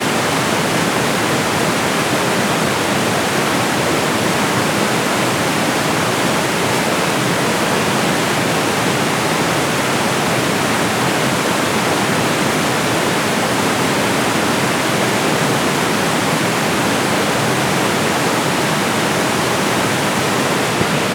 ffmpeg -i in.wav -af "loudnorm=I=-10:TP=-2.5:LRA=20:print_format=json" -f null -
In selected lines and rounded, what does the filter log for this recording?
"input_i" : "-15.6",
"input_tp" : "-1.9",
"input_lra" : "0.3",
"input_thresh" : "-25.6",